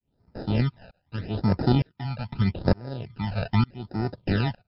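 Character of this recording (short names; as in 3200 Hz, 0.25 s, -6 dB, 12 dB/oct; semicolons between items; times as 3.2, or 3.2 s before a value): tremolo saw up 1.1 Hz, depth 100%; aliases and images of a low sample rate 1100 Hz, jitter 0%; phasing stages 12, 0.81 Hz, lowest notch 330–3200 Hz; MP3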